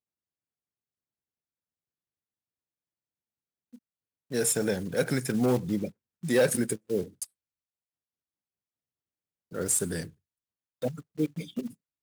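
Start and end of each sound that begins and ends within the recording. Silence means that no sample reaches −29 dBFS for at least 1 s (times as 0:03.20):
0:04.33–0:07.23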